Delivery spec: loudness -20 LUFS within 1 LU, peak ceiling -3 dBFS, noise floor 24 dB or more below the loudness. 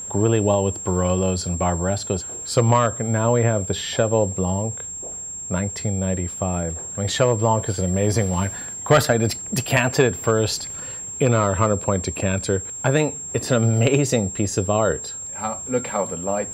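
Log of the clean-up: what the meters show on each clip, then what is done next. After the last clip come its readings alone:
ticks 47/s; steady tone 7500 Hz; tone level -30 dBFS; loudness -21.5 LUFS; peak -3.5 dBFS; loudness target -20.0 LUFS
-> de-click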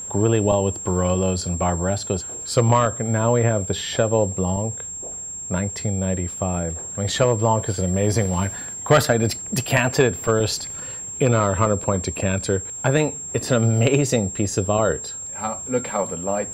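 ticks 0.42/s; steady tone 7500 Hz; tone level -30 dBFS
-> notch 7500 Hz, Q 30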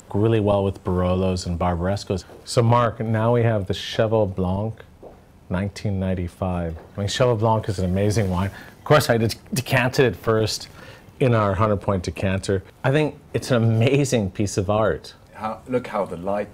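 steady tone none; loudness -22.0 LUFS; peak -4.0 dBFS; loudness target -20.0 LUFS
-> gain +2 dB; limiter -3 dBFS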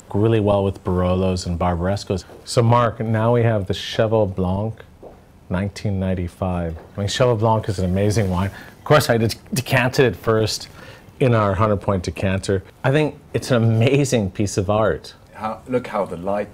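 loudness -20.0 LUFS; peak -3.0 dBFS; noise floor -46 dBFS

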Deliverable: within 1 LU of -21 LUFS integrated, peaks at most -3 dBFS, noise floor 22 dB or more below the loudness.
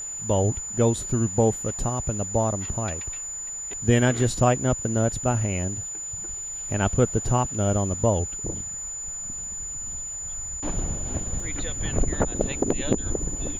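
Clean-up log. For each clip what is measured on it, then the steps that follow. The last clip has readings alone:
dropouts 1; longest dropout 1.8 ms; steady tone 7000 Hz; tone level -31 dBFS; loudness -25.5 LUFS; peak -5.0 dBFS; loudness target -21.0 LUFS
-> interpolate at 11.4, 1.8 ms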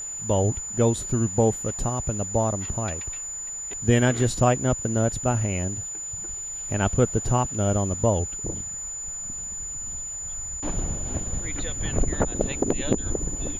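dropouts 0; steady tone 7000 Hz; tone level -31 dBFS
-> notch 7000 Hz, Q 30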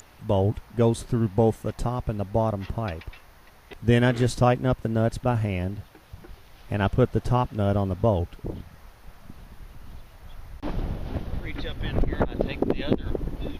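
steady tone none; loudness -26.0 LUFS; peak -5.5 dBFS; loudness target -21.0 LUFS
-> gain +5 dB; limiter -3 dBFS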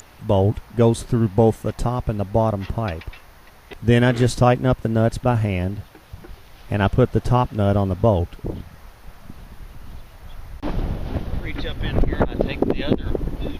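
loudness -21.0 LUFS; peak -3.0 dBFS; noise floor -47 dBFS

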